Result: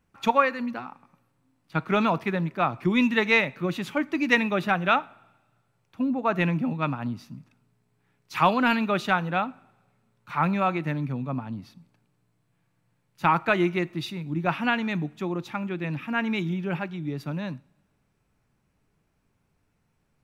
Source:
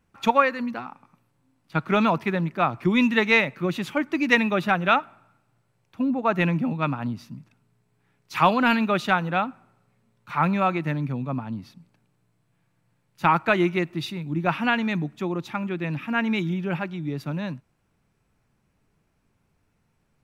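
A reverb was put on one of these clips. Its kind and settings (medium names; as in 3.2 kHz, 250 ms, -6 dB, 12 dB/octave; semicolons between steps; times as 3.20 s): two-slope reverb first 0.41 s, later 1.5 s, from -17 dB, DRR 19 dB; trim -2 dB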